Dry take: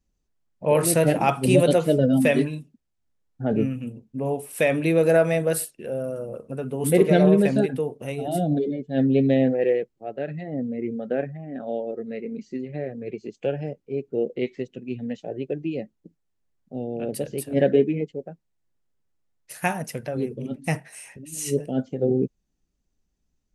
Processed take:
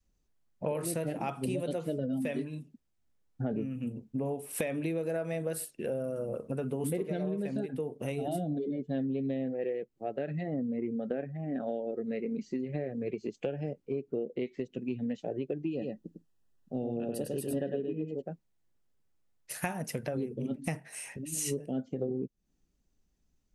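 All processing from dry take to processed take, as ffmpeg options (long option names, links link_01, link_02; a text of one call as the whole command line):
ffmpeg -i in.wav -filter_complex "[0:a]asettb=1/sr,asplit=3[link_01][link_02][link_03];[link_01]atrim=end=15.714[link_04];[link_02]atrim=start=15.71:end=18.22,asetpts=PTS-STARTPTS,afade=type=in:duration=0.004:curve=qsin,afade=type=out:start_time=2.506:duration=0.004:curve=qsin,asuperstop=centerf=2200:order=12:qfactor=5.4,aecho=1:1:102:0.596,atrim=end_sample=110691[link_05];[link_03]atrim=start=18.216[link_06];[link_04][link_05]acrossfade=duration=0.004:curve1=hsin:curve2=qsin[link_07];[link_07][link_06]acrossfade=duration=0.004:curve1=qsin:curve2=hsin,adynamicequalizer=threshold=0.0316:dfrequency=260:dqfactor=0.79:tfrequency=260:tqfactor=0.79:attack=5:release=100:ratio=0.375:range=2:mode=boostabove:tftype=bell,acompressor=threshold=-30dB:ratio=12" out.wav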